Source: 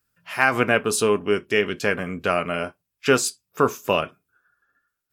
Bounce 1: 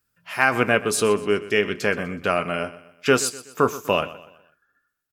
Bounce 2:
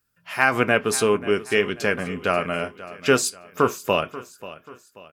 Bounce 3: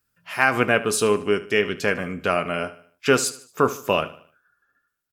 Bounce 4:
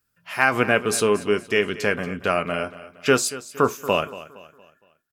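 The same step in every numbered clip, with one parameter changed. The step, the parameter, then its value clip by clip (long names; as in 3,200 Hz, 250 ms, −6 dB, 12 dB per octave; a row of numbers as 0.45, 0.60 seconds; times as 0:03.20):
repeating echo, delay time: 124, 536, 75, 232 milliseconds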